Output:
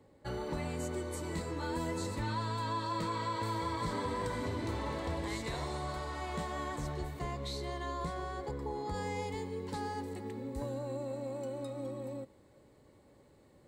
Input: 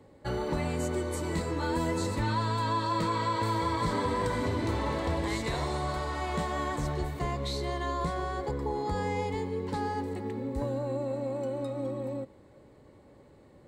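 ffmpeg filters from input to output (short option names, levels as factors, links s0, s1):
-af "asetnsamples=n=441:p=0,asendcmd='8.94 highshelf g 9',highshelf=f=4100:g=2.5,volume=0.473"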